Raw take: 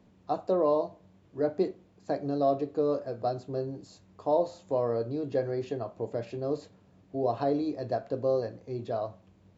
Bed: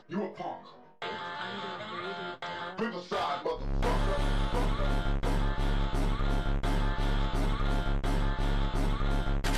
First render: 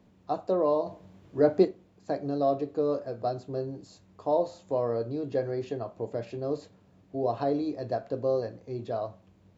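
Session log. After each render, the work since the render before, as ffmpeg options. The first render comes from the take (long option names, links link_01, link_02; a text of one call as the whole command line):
ffmpeg -i in.wav -filter_complex "[0:a]asettb=1/sr,asplit=3[link_01][link_02][link_03];[link_01]atrim=end=0.864[link_04];[link_02]atrim=start=0.86:end=1.65,asetpts=PTS-STARTPTS,afade=type=in:duration=0.004:curve=qsin,afade=type=out:start_time=0.786:duration=0.004:curve=qsin,acontrast=59[link_05];[link_03]atrim=start=1.646[link_06];[link_04][link_05]acrossfade=duration=0.004:curve1=hsin:curve2=qsin[link_07];[link_07][link_06]acrossfade=duration=0.004:curve1=qsin:curve2=hsin" out.wav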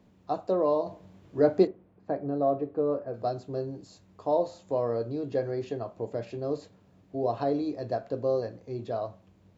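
ffmpeg -i in.wav -filter_complex "[0:a]asettb=1/sr,asplit=3[link_01][link_02][link_03];[link_01]atrim=end=1.674[link_04];[link_02]atrim=start=1.67:end=3.14,asetpts=PTS-STARTPTS,afade=type=in:duration=0.004:curve=qsin,afade=type=out:start_time=1.466:duration=0.004:curve=qsin,lowpass=1800[link_05];[link_03]atrim=start=3.136[link_06];[link_04][link_05]acrossfade=duration=0.004:curve1=hsin:curve2=qsin[link_07];[link_07][link_06]acrossfade=duration=0.004:curve1=qsin:curve2=hsin" out.wav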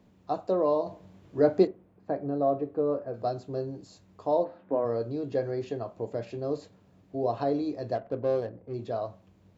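ffmpeg -i in.wav -filter_complex "[0:a]asplit=3[link_01][link_02][link_03];[link_01]afade=type=out:start_time=4.43:duration=0.02[link_04];[link_02]highpass=120,equalizer=frequency=120:width_type=q:width=4:gain=-10,equalizer=frequency=270:width_type=q:width=4:gain=7,equalizer=frequency=1500:width_type=q:width=4:gain=8,lowpass=frequency=2300:width=0.5412,lowpass=frequency=2300:width=1.3066,afade=type=in:start_time=4.43:duration=0.02,afade=type=out:start_time=4.84:duration=0.02[link_05];[link_03]afade=type=in:start_time=4.84:duration=0.02[link_06];[link_04][link_05][link_06]amix=inputs=3:normalize=0,asettb=1/sr,asplit=3[link_07][link_08][link_09];[link_07]atrim=end=7.954[link_10];[link_08]atrim=start=7.95:end=8.74,asetpts=PTS-STARTPTS,afade=type=in:duration=0.004:curve=qsin,afade=type=out:start_time=0.786:duration=0.004:curve=qsin,adynamicsmooth=sensitivity=6.5:basefreq=1100[link_11];[link_09]atrim=start=8.736[link_12];[link_10][link_11]acrossfade=duration=0.004:curve1=hsin:curve2=qsin[link_13];[link_13][link_12]acrossfade=duration=0.004:curve1=qsin:curve2=hsin" out.wav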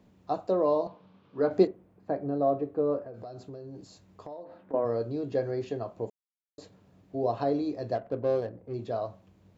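ffmpeg -i in.wav -filter_complex "[0:a]asettb=1/sr,asplit=3[link_01][link_02][link_03];[link_01]atrim=end=0.874[link_04];[link_02]atrim=start=0.87:end=1.51,asetpts=PTS-STARTPTS,afade=type=in:duration=0.004:curve=qsin,afade=type=out:start_time=0.636:duration=0.004:curve=qsin,highpass=200,equalizer=frequency=340:width_type=q:width=4:gain=-10,equalizer=frequency=650:width_type=q:width=4:gain=-8,equalizer=frequency=1200:width_type=q:width=4:gain=5,equalizer=frequency=1900:width_type=q:width=4:gain=-7,lowpass=frequency=4200:width=0.5412,lowpass=frequency=4200:width=1.3066[link_05];[link_03]atrim=start=1.506[link_06];[link_04][link_05]acrossfade=duration=0.004:curve1=hsin:curve2=qsin[link_07];[link_07][link_06]acrossfade=duration=0.004:curve1=qsin:curve2=hsin,asettb=1/sr,asplit=3[link_08][link_09][link_10];[link_08]atrim=end=3.054[link_11];[link_09]atrim=start=3.05:end=4.74,asetpts=PTS-STARTPTS,afade=type=in:duration=0.004:curve=qsin,afade=type=out:start_time=1.686:duration=0.004:curve=qsin,acompressor=threshold=-38dB:ratio=12:attack=3.2:release=140:knee=1:detection=peak[link_12];[link_10]atrim=start=4.736[link_13];[link_11][link_12]acrossfade=duration=0.004:curve1=hsin:curve2=qsin[link_14];[link_14][link_13]acrossfade=duration=0.004:curve1=qsin:curve2=hsin,asplit=3[link_15][link_16][link_17];[link_15]atrim=end=6.1,asetpts=PTS-STARTPTS,afade=type=out:start_time=6.096:duration=0.004:curve=hsin[link_18];[link_16]atrim=start=6.1:end=6.58,asetpts=PTS-STARTPTS,volume=0[link_19];[link_17]atrim=start=6.58,asetpts=PTS-STARTPTS,afade=type=in:duration=0.004:curve=hsin[link_20];[link_18][link_19][link_20]concat=n=3:v=0:a=1" out.wav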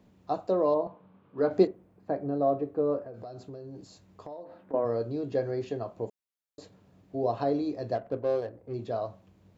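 ffmpeg -i in.wav -filter_complex "[0:a]asettb=1/sr,asplit=3[link_01][link_02][link_03];[link_01]atrim=end=0.744[link_04];[link_02]atrim=start=0.74:end=1.38,asetpts=PTS-STARTPTS,afade=type=in:duration=0.004:curve=qsin,afade=type=out:start_time=0.636:duration=0.004:curve=qsin,lowpass=2000[link_05];[link_03]atrim=start=1.376[link_06];[link_04][link_05]acrossfade=duration=0.004:curve1=hsin:curve2=qsin[link_07];[link_07][link_06]acrossfade=duration=0.004:curve1=qsin:curve2=hsin,asettb=1/sr,asplit=3[link_08][link_09][link_10];[link_08]atrim=end=8.174[link_11];[link_09]atrim=start=8.17:end=8.65,asetpts=PTS-STARTPTS,afade=type=in:duration=0.004:curve=qsin,afade=type=out:start_time=0.476:duration=0.004:curve=qsin,equalizer=frequency=170:width_type=o:width=0.99:gain=-10[link_12];[link_10]atrim=start=8.646[link_13];[link_11][link_12]acrossfade=duration=0.004:curve1=hsin:curve2=qsin[link_14];[link_14][link_13]acrossfade=duration=0.004:curve1=qsin:curve2=hsin" out.wav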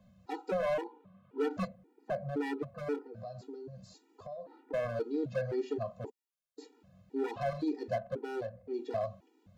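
ffmpeg -i in.wav -filter_complex "[0:a]acrossover=split=210[link_01][link_02];[link_02]asoftclip=type=hard:threshold=-27.5dB[link_03];[link_01][link_03]amix=inputs=2:normalize=0,afftfilt=real='re*gt(sin(2*PI*1.9*pts/sr)*(1-2*mod(floor(b*sr/1024/250),2)),0)':imag='im*gt(sin(2*PI*1.9*pts/sr)*(1-2*mod(floor(b*sr/1024/250),2)),0)':win_size=1024:overlap=0.75" out.wav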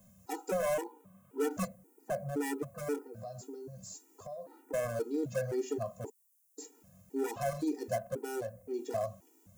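ffmpeg -i in.wav -af "aexciter=amount=11.8:drive=3.9:freq=6100" out.wav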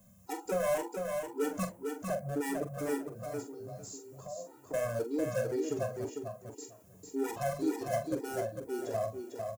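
ffmpeg -i in.wav -filter_complex "[0:a]asplit=2[link_01][link_02];[link_02]adelay=44,volume=-9dB[link_03];[link_01][link_03]amix=inputs=2:normalize=0,aecho=1:1:450|900|1350:0.562|0.09|0.0144" out.wav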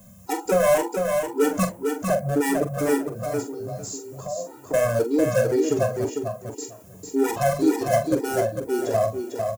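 ffmpeg -i in.wav -af "volume=12dB" out.wav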